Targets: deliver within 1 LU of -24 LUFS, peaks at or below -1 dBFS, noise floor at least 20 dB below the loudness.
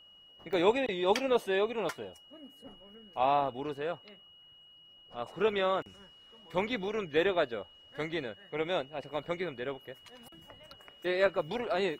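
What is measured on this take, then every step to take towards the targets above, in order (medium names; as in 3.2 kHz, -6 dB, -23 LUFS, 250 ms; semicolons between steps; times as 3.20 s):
dropouts 1; longest dropout 1.1 ms; steady tone 2.9 kHz; tone level -55 dBFS; loudness -32.0 LUFS; peak level -13.0 dBFS; loudness target -24.0 LUFS
-> interpolate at 0.53 s, 1.1 ms; band-stop 2.9 kHz, Q 30; trim +8 dB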